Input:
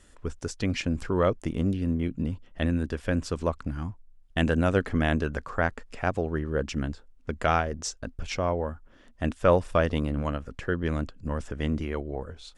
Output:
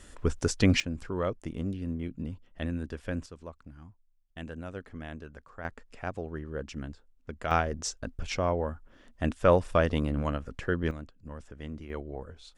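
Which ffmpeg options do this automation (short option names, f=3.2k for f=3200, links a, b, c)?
-af "asetnsamples=n=441:p=0,asendcmd='0.8 volume volume -7dB;3.26 volume volume -16.5dB;5.65 volume volume -8.5dB;7.51 volume volume -1dB;10.91 volume volume -12dB;11.9 volume volume -5.5dB',volume=5.5dB"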